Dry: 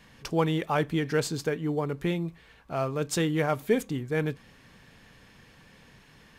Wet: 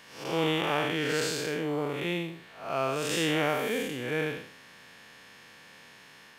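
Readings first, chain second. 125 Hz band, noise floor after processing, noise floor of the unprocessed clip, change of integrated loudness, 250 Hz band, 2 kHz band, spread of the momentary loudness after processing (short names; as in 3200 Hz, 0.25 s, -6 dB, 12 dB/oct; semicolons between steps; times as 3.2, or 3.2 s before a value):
-6.5 dB, -53 dBFS, -56 dBFS, -1.0 dB, -3.0 dB, +3.5 dB, 8 LU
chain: time blur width 0.214 s; HPF 630 Hz 6 dB/oct; dynamic EQ 2800 Hz, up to +6 dB, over -58 dBFS, Q 2.4; gain +7.5 dB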